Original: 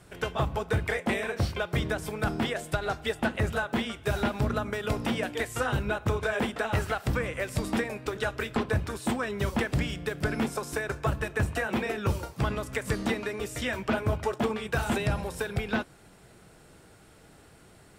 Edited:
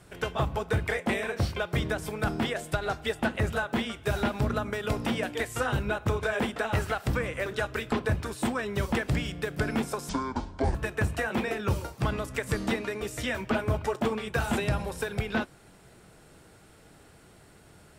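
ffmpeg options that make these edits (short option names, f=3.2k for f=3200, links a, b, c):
-filter_complex "[0:a]asplit=4[a][b][c][d];[a]atrim=end=7.462[e];[b]atrim=start=8.098:end=10.734[f];[c]atrim=start=10.73:end=11.13,asetpts=PTS-STARTPTS,asetrate=26901,aresample=44100,atrim=end_sample=28918,asetpts=PTS-STARTPTS[g];[d]atrim=start=11.126[h];[e][f]acrossfade=d=0.004:c1=hsin:c2=hsin[i];[i][g]acrossfade=d=0.004:c1=hsin:c2=hsin[j];[j][h]acrossfade=d=0.004:c1=hsin:c2=hsin"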